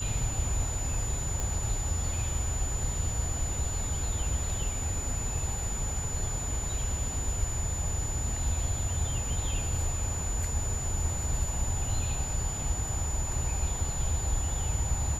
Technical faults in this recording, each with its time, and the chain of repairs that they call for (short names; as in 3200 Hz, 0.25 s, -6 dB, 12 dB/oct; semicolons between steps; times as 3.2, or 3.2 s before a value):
tone 7000 Hz -35 dBFS
1.4 pop -19 dBFS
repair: de-click; notch 7000 Hz, Q 30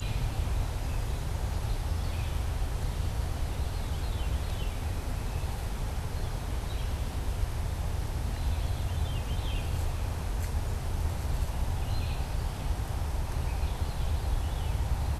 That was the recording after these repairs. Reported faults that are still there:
none